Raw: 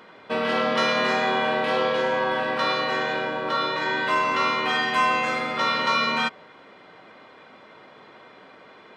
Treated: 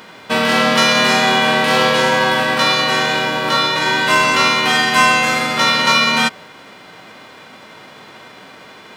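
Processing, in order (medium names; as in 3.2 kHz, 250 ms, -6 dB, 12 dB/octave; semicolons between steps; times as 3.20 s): formants flattened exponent 0.6; trim +9 dB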